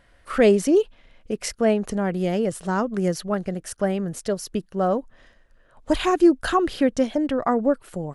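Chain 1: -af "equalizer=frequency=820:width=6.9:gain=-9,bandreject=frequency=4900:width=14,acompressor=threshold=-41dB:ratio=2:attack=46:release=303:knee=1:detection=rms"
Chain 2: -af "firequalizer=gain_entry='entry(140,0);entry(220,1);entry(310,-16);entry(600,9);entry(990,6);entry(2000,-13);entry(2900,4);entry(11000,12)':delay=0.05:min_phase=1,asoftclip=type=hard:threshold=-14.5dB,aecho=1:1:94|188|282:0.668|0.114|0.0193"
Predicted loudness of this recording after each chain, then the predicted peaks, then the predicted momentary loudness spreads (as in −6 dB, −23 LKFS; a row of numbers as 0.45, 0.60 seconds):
−35.0, −21.5 LKFS; −20.0, −10.0 dBFS; 6, 5 LU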